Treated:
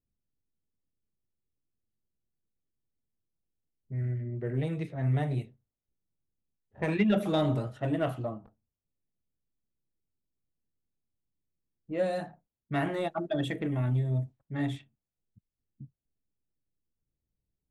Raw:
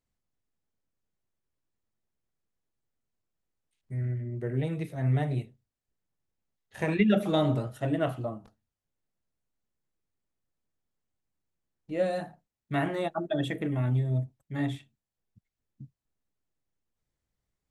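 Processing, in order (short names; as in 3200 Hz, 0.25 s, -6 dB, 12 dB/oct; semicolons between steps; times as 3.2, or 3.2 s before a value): low-pass opened by the level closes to 390 Hz, open at -26.5 dBFS; in parallel at -4 dB: soft clip -24.5 dBFS, distortion -12 dB; on the sum: gain -4.5 dB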